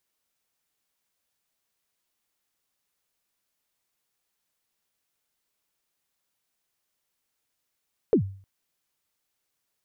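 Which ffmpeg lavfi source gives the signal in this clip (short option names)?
-f lavfi -i "aevalsrc='0.224*pow(10,-3*t/0.46)*sin(2*PI*(500*0.093/log(97/500)*(exp(log(97/500)*min(t,0.093)/0.093)-1)+97*max(t-0.093,0)))':d=0.31:s=44100"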